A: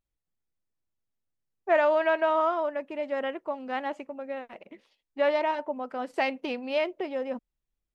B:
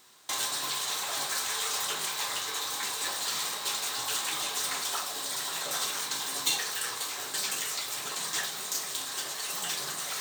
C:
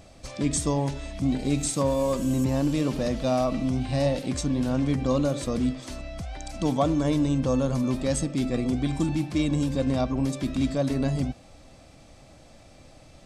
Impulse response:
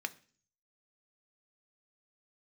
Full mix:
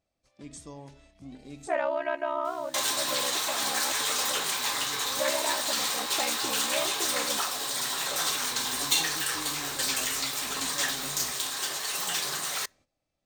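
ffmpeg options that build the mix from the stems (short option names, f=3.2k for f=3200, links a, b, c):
-filter_complex "[0:a]aeval=exprs='val(0)*sin(2*PI*33*n/s)':c=same,volume=-3dB,asplit=2[a][b];[1:a]adelay=2450,volume=2dB,asplit=2[c][d];[d]volume=-14.5dB[e];[2:a]lowshelf=f=200:g=-5,bandreject=f=130.7:t=h:w=4,bandreject=f=261.4:t=h:w=4,volume=-18dB,asplit=2[f][g];[g]volume=-17.5dB[h];[b]apad=whole_len=584686[i];[f][i]sidechaincompress=threshold=-49dB:ratio=3:attack=5.2:release=1100[j];[3:a]atrim=start_sample=2205[k];[e][h]amix=inputs=2:normalize=0[l];[l][k]afir=irnorm=-1:irlink=0[m];[a][c][j][m]amix=inputs=4:normalize=0,agate=range=-13dB:threshold=-55dB:ratio=16:detection=peak"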